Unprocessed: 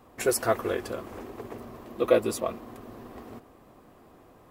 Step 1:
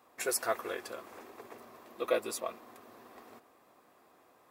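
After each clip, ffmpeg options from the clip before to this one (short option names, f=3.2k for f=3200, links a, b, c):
-af "highpass=f=910:p=1,bandreject=f=3k:w=15,volume=-3dB"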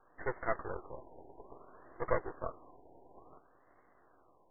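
-af "afftfilt=real='re*between(b*sr/4096,250,3300)':imag='im*between(b*sr/4096,250,3300)':win_size=4096:overlap=0.75,aeval=exprs='max(val(0),0)':c=same,afftfilt=real='re*lt(b*sr/1024,950*pow(2200/950,0.5+0.5*sin(2*PI*0.58*pts/sr)))':imag='im*lt(b*sr/1024,950*pow(2200/950,0.5+0.5*sin(2*PI*0.58*pts/sr)))':win_size=1024:overlap=0.75,volume=2dB"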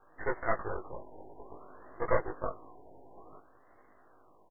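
-filter_complex "[0:a]asplit=2[a][b];[b]adelay=19,volume=-2dB[c];[a][c]amix=inputs=2:normalize=0,volume=2dB"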